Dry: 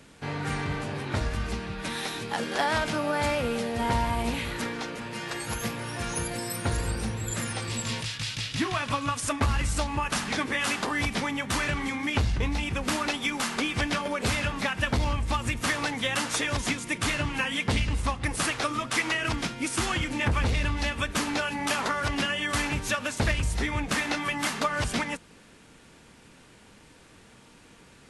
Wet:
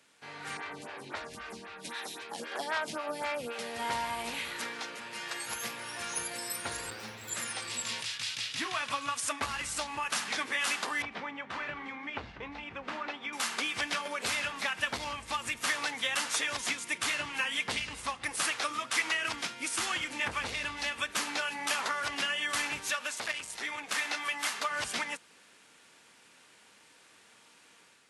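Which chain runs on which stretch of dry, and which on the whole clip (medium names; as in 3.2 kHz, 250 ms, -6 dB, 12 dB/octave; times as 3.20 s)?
0.57–3.59 s: peaking EQ 210 Hz +3.5 dB 2.5 oct + lamp-driven phase shifter 3.8 Hz
6.90–7.30 s: comb filter that takes the minimum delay 9.4 ms + peaking EQ 9.1 kHz -15 dB 0.56 oct
11.02–13.33 s: low-pass 3.5 kHz + treble shelf 2.2 kHz -11.5 dB + hum notches 50/100/150/200/250/300/350 Hz
22.90–24.71 s: high-pass 330 Hz 6 dB/octave + transformer saturation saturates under 1.1 kHz
whole clip: high-pass 1.1 kHz 6 dB/octave; level rider gain up to 6 dB; trim -7.5 dB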